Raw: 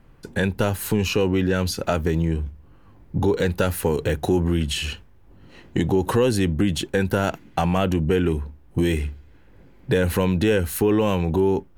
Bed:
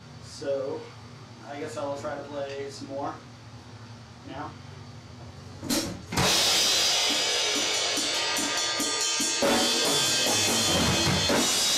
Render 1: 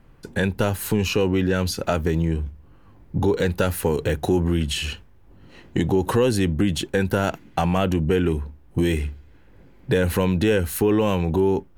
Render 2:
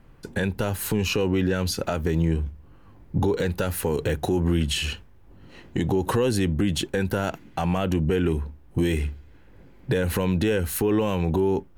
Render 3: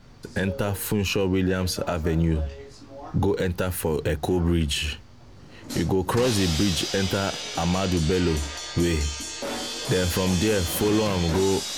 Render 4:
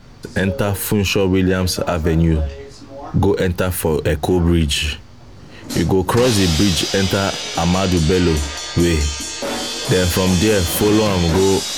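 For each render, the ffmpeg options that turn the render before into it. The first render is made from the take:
ffmpeg -i in.wav -af anull out.wav
ffmpeg -i in.wav -af "alimiter=limit=-13.5dB:level=0:latency=1:release=123" out.wav
ffmpeg -i in.wav -i bed.wav -filter_complex "[1:a]volume=-7.5dB[link_01];[0:a][link_01]amix=inputs=2:normalize=0" out.wav
ffmpeg -i in.wav -af "volume=7.5dB" out.wav

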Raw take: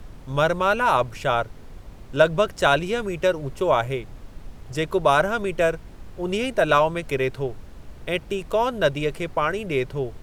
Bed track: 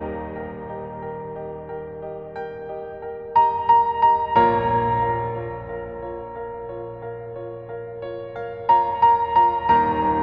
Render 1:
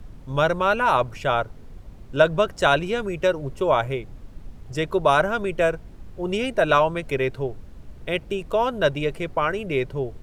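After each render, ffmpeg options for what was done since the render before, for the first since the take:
ffmpeg -i in.wav -af "afftdn=noise_reduction=6:noise_floor=-43" out.wav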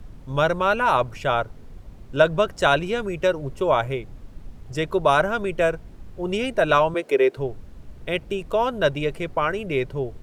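ffmpeg -i in.wav -filter_complex "[0:a]asettb=1/sr,asplit=3[link_01][link_02][link_03];[link_01]atrim=end=6.944[link_04];[link_02]atrim=start=6.94:end=7.37,asetpts=PTS-STARTPTS,afade=type=in:duration=0.004:curve=qsin,afade=type=out:start_time=0.426:duration=0.004:curve=qsin,highpass=frequency=380:width_type=q:width=2.1[link_05];[link_03]atrim=start=7.366[link_06];[link_04][link_05]acrossfade=duration=0.004:curve1=hsin:curve2=qsin[link_07];[link_07][link_06]acrossfade=duration=0.004:curve1=qsin:curve2=hsin" out.wav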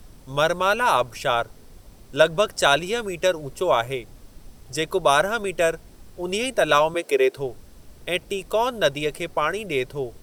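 ffmpeg -i in.wav -af "bass=frequency=250:gain=-6,treble=frequency=4000:gain=13,bandreject=frequency=6800:width=10" out.wav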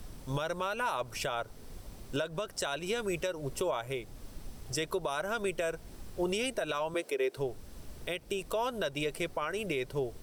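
ffmpeg -i in.wav -af "acompressor=threshold=-20dB:ratio=6,alimiter=limit=-23dB:level=0:latency=1:release=328" out.wav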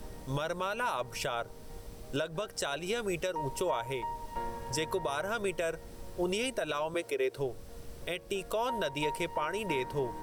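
ffmpeg -i in.wav -i bed.wav -filter_complex "[1:a]volume=-22dB[link_01];[0:a][link_01]amix=inputs=2:normalize=0" out.wav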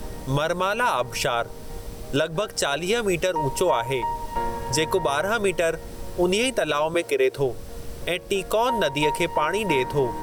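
ffmpeg -i in.wav -af "volume=10.5dB" out.wav

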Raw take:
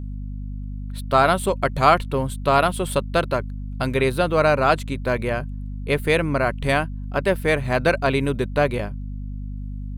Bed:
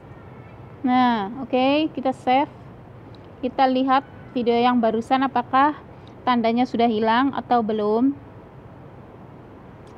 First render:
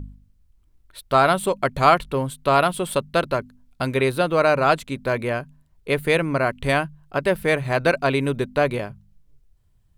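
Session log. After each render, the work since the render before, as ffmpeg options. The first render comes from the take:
ffmpeg -i in.wav -af "bandreject=frequency=50:width_type=h:width=4,bandreject=frequency=100:width_type=h:width=4,bandreject=frequency=150:width_type=h:width=4,bandreject=frequency=200:width_type=h:width=4,bandreject=frequency=250:width_type=h:width=4" out.wav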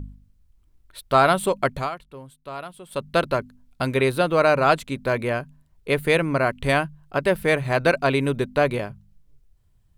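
ffmpeg -i in.wav -filter_complex "[0:a]asplit=3[link_01][link_02][link_03];[link_01]atrim=end=1.89,asetpts=PTS-STARTPTS,afade=type=out:start_time=1.71:duration=0.18:silence=0.141254[link_04];[link_02]atrim=start=1.89:end=2.9,asetpts=PTS-STARTPTS,volume=-17dB[link_05];[link_03]atrim=start=2.9,asetpts=PTS-STARTPTS,afade=type=in:duration=0.18:silence=0.141254[link_06];[link_04][link_05][link_06]concat=n=3:v=0:a=1" out.wav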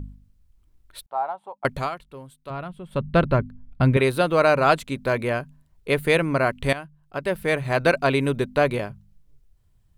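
ffmpeg -i in.wav -filter_complex "[0:a]asettb=1/sr,asplit=3[link_01][link_02][link_03];[link_01]atrim=end=1.064[link_04];[link_02]atrim=start=1.06:end=1.65,asetpts=PTS-STARTPTS,afade=type=in:duration=0.004:curve=qsin,afade=type=out:start_time=0.586:duration=0.004:curve=qsin,bandpass=frequency=830:width_type=q:width=9.2[link_05];[link_03]atrim=start=1.646[link_06];[link_04][link_05]acrossfade=duration=0.004:curve1=hsin:curve2=qsin[link_07];[link_07][link_06]acrossfade=duration=0.004:curve1=qsin:curve2=hsin,asettb=1/sr,asplit=3[link_08][link_09][link_10];[link_08]atrim=end=2.504[link_11];[link_09]atrim=start=2.5:end=3.97,asetpts=PTS-STARTPTS,afade=type=in:duration=0.004:curve=qsin,afade=type=out:start_time=1.466:duration=0.004:curve=qsin,bass=frequency=250:gain=12,treble=frequency=4000:gain=-14[link_12];[link_10]atrim=start=3.966[link_13];[link_11][link_12]acrossfade=duration=0.004:curve1=hsin:curve2=qsin[link_14];[link_14][link_13]acrossfade=duration=0.004:curve1=qsin:curve2=hsin,asplit=2[link_15][link_16];[link_15]atrim=end=6.73,asetpts=PTS-STARTPTS,afade=type=out:start_time=6.726:duration=0.004:curve=hsin:silence=0.16788[link_17];[link_16]atrim=start=6.73,asetpts=PTS-STARTPTS,afade=type=in:duration=1.12:silence=0.16788[link_18];[link_17][link_18]concat=n=2:v=0:a=1" out.wav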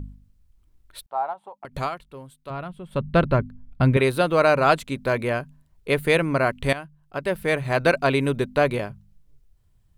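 ffmpeg -i in.wav -filter_complex "[0:a]asettb=1/sr,asplit=3[link_01][link_02][link_03];[link_01]atrim=end=1.334[link_04];[link_02]atrim=start=1.33:end=1.75,asetpts=PTS-STARTPTS,afade=type=in:duration=0.004:curve=qsin,afade=type=out:start_time=0.416:duration=0.004:curve=qsin,acompressor=threshold=-34dB:ratio=16:attack=3.2:release=140:knee=1:detection=peak[link_05];[link_03]atrim=start=1.746[link_06];[link_04][link_05]acrossfade=duration=0.004:curve1=hsin:curve2=qsin[link_07];[link_07][link_06]acrossfade=duration=0.004:curve1=qsin:curve2=hsin" out.wav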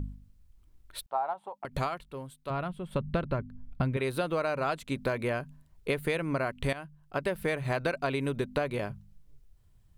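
ffmpeg -i in.wav -af "acompressor=threshold=-26dB:ratio=12" out.wav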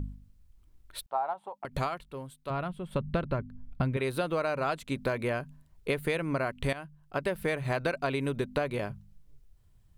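ffmpeg -i in.wav -af anull out.wav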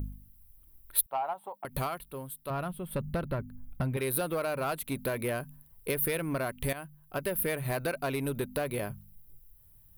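ffmpeg -i in.wav -af "asoftclip=type=tanh:threshold=-23.5dB,aexciter=amount=14.3:drive=3.5:freq=9800" out.wav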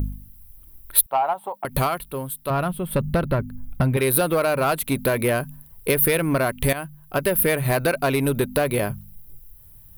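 ffmpeg -i in.wav -af "volume=11dB,alimiter=limit=-2dB:level=0:latency=1" out.wav

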